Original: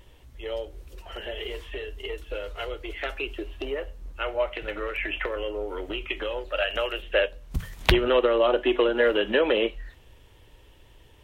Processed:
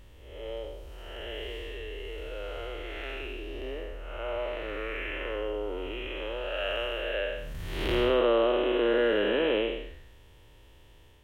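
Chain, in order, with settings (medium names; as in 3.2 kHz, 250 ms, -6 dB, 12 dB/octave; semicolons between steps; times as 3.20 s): spectral blur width 295 ms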